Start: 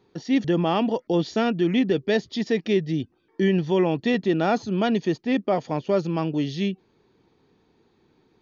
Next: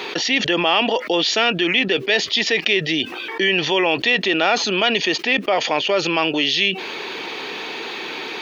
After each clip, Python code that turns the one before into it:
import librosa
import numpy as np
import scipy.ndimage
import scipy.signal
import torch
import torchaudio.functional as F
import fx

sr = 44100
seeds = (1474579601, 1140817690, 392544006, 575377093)

y = scipy.signal.sosfilt(scipy.signal.butter(2, 490.0, 'highpass', fs=sr, output='sos'), x)
y = fx.peak_eq(y, sr, hz=2700.0, db=13.5, octaves=1.2)
y = fx.env_flatten(y, sr, amount_pct=70)
y = F.gain(torch.from_numpy(y), 2.0).numpy()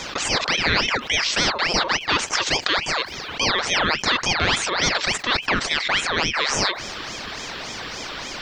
y = x + 10.0 ** (-22.0 / 20.0) * np.pad(x, (int(420 * sr / 1000.0), 0))[:len(x)]
y = fx.ring_lfo(y, sr, carrier_hz=1800.0, swing_pct=60, hz=3.5)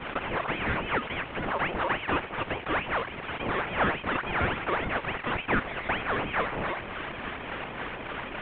y = fx.cvsd(x, sr, bps=16000)